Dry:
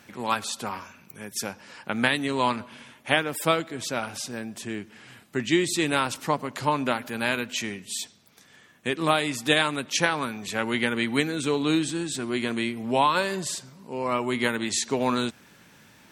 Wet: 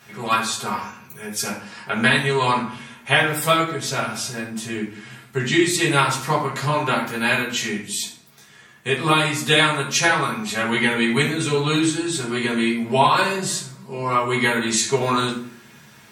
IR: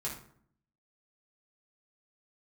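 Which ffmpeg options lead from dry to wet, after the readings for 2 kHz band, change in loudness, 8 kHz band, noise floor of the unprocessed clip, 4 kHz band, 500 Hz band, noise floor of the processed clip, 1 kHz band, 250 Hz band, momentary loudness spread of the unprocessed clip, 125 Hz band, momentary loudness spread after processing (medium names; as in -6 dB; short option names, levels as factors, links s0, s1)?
+7.0 dB, +6.0 dB, +6.5 dB, -55 dBFS, +6.0 dB, +4.5 dB, -48 dBFS, +6.0 dB, +4.5 dB, 12 LU, +9.0 dB, 12 LU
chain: -filter_complex "[0:a]tiltshelf=f=810:g=-3[s0];[1:a]atrim=start_sample=2205[s1];[s0][s1]afir=irnorm=-1:irlink=0,volume=1.5"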